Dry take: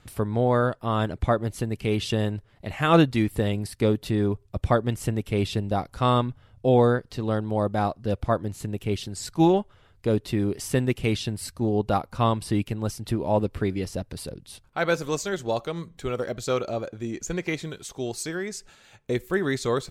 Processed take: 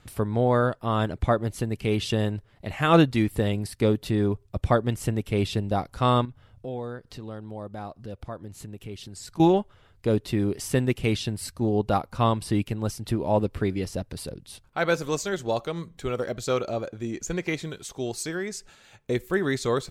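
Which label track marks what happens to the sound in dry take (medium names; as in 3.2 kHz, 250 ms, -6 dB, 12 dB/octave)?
6.250000	9.400000	compression 2:1, threshold -42 dBFS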